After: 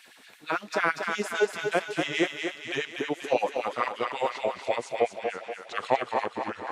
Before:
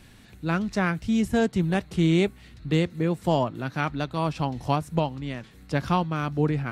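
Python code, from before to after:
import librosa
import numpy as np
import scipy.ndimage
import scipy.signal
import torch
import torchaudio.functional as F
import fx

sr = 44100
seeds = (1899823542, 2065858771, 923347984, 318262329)

y = fx.pitch_glide(x, sr, semitones=-6.0, runs='starting unshifted')
y = fx.filter_lfo_highpass(y, sr, shape='sine', hz=8.9, low_hz=390.0, high_hz=2600.0, q=1.6)
y = fx.echo_thinned(y, sr, ms=240, feedback_pct=56, hz=310.0, wet_db=-5)
y = y * 10.0 ** (1.5 / 20.0)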